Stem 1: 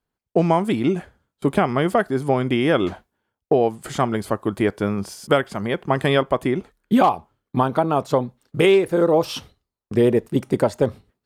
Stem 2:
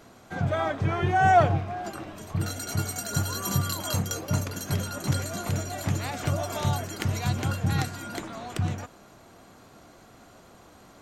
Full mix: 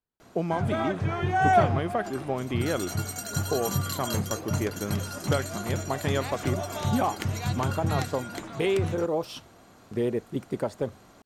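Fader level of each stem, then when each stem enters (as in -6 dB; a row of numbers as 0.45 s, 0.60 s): -10.5 dB, -2.0 dB; 0.00 s, 0.20 s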